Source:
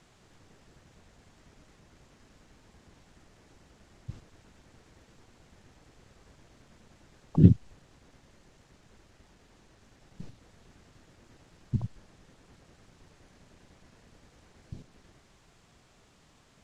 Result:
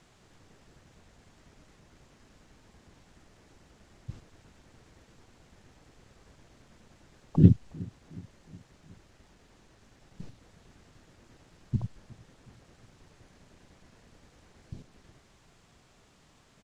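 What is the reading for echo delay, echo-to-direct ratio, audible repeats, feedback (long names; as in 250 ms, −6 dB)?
365 ms, −20.5 dB, 3, 54%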